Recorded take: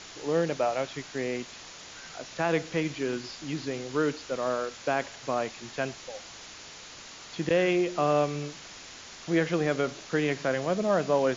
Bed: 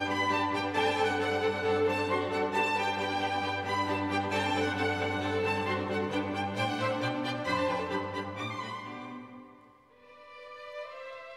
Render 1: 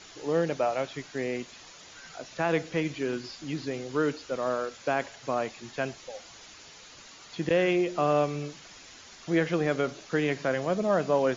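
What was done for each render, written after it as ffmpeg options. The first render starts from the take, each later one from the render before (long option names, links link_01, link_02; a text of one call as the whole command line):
ffmpeg -i in.wav -af "afftdn=noise_reduction=7:noise_floor=-46" out.wav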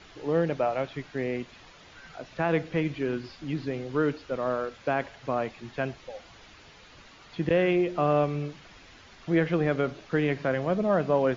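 ffmpeg -i in.wav -af "lowpass=3400,lowshelf=frequency=130:gain=9.5" out.wav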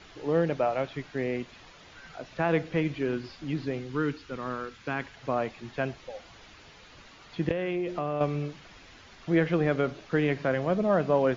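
ffmpeg -i in.wav -filter_complex "[0:a]asettb=1/sr,asplit=3[link_01][link_02][link_03];[link_01]atrim=end=3.794[link_04];[link_02]atrim=start=3.79:end=5.17,asetpts=PTS-STARTPTS,afade=type=in:duration=0.004:curve=qsin,afade=type=out:start_time=1.376:duration=0.004:curve=qsin,equalizer=frequency=610:width=2:gain=-13.5[link_05];[link_03]atrim=start=5.166[link_06];[link_04][link_05]acrossfade=duration=0.004:curve1=hsin:curve2=qsin[link_07];[link_07][link_06]acrossfade=duration=0.004:curve1=qsin:curve2=hsin,asettb=1/sr,asplit=3[link_08][link_09][link_10];[link_08]atrim=end=7.514[link_11];[link_09]atrim=start=7.51:end=8.21,asetpts=PTS-STARTPTS,afade=type=in:duration=0.004:curve=qsin,afade=type=out:start_time=0.696:duration=0.004:curve=qsin,acompressor=threshold=-26dB:ratio=6:attack=3.2:release=140:knee=1:detection=peak[link_12];[link_10]atrim=start=8.206[link_13];[link_11][link_12]acrossfade=duration=0.004:curve1=hsin:curve2=qsin[link_14];[link_14][link_13]acrossfade=duration=0.004:curve1=qsin:curve2=hsin" out.wav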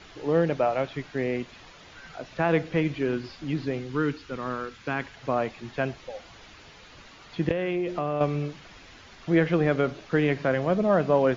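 ffmpeg -i in.wav -af "volume=2.5dB" out.wav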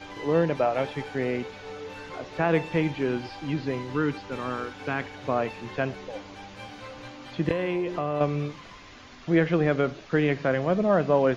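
ffmpeg -i in.wav -i bed.wav -filter_complex "[1:a]volume=-11.5dB[link_01];[0:a][link_01]amix=inputs=2:normalize=0" out.wav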